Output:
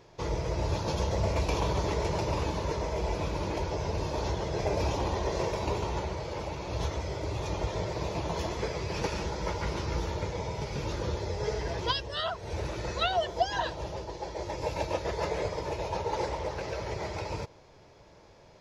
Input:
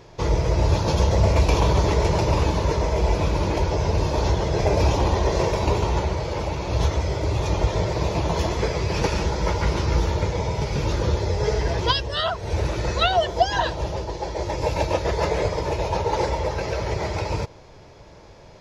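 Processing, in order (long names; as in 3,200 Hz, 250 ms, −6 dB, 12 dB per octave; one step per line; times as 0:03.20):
low-shelf EQ 110 Hz −5.5 dB
0:16.28–0:16.72: highs frequency-modulated by the lows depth 0.29 ms
level −8 dB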